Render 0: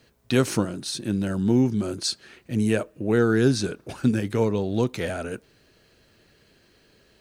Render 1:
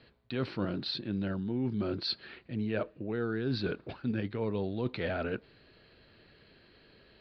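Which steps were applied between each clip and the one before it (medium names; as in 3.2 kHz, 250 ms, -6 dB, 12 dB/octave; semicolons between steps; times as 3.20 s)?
elliptic low-pass 4.4 kHz, stop band 40 dB; reverse; compression 10:1, threshold -29 dBFS, peak gain reduction 14.5 dB; reverse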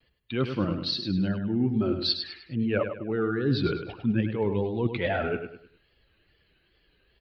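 expander on every frequency bin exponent 1.5; vibrato 2.4 Hz 99 cents; on a send: feedback delay 102 ms, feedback 35%, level -8 dB; on the sum: trim +8.5 dB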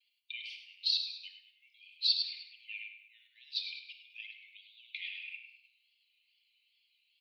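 steep high-pass 2.2 kHz 96 dB/octave; in parallel at +3 dB: level held to a coarse grid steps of 17 dB; on the sum: simulated room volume 3500 m³, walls furnished, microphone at 2.6 m; trim -6.5 dB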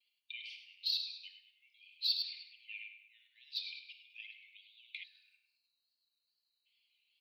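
time-frequency box 5.03–6.66 s, 1.8–3.7 kHz -23 dB; in parallel at -11 dB: hard clipper -30.5 dBFS, distortion -7 dB; on the sum: trim -5.5 dB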